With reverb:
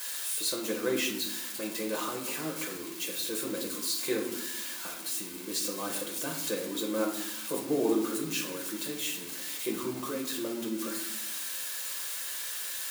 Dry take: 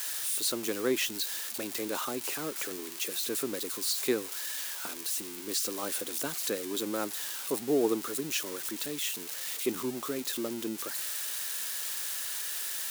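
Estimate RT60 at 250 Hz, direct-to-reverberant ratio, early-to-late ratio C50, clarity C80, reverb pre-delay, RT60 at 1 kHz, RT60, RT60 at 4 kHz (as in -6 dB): 1.4 s, -2.5 dB, 6.0 dB, 9.5 dB, 5 ms, 0.80 s, 0.90 s, 0.50 s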